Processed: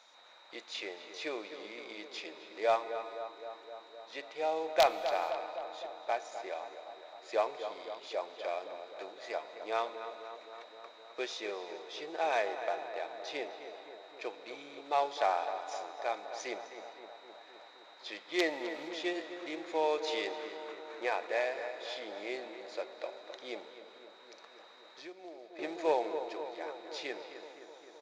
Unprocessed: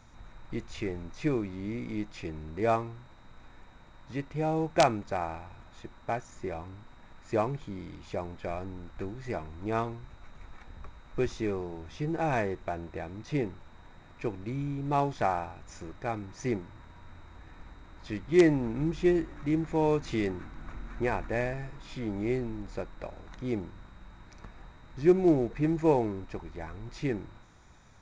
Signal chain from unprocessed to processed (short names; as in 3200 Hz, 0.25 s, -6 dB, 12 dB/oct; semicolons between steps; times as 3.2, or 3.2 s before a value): ladder high-pass 460 Hz, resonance 40%; bell 3800 Hz +14 dB 1.2 oct; in parallel at -9 dB: hard clip -24.5 dBFS, distortion -13 dB; on the sum: darkening echo 0.259 s, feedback 74%, low-pass 2300 Hz, level -10.5 dB; soft clip -14 dBFS, distortion -24 dB; 23.68–25.59 compressor 4:1, threshold -49 dBFS, peak gain reduction 18 dB; on a send at -14 dB: comb 4.1 ms, depth 54% + reverb, pre-delay 3 ms